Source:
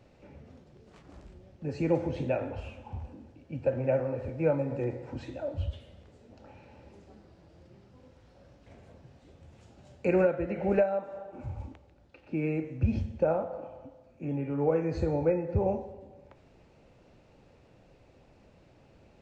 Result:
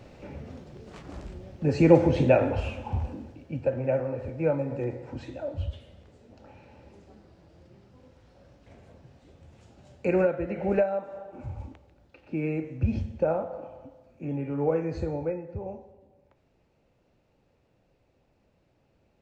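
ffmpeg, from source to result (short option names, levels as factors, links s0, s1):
-af "volume=3.16,afade=t=out:st=3.08:d=0.62:silence=0.354813,afade=t=out:st=14.71:d=0.88:silence=0.316228"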